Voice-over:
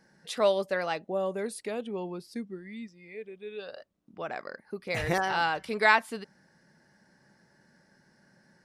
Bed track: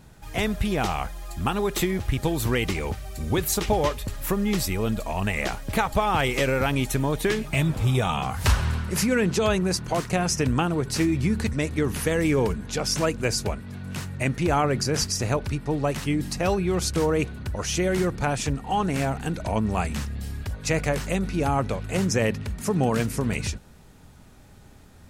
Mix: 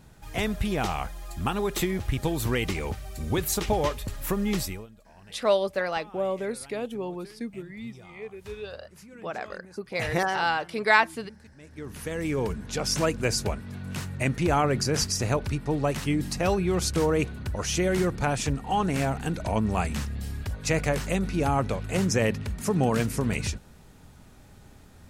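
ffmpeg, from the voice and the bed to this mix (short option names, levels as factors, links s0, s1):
-filter_complex "[0:a]adelay=5050,volume=1.26[s0];[1:a]volume=13.3,afade=t=out:st=4.57:d=0.3:silence=0.0668344,afade=t=in:st=11.6:d=1.38:silence=0.0562341[s1];[s0][s1]amix=inputs=2:normalize=0"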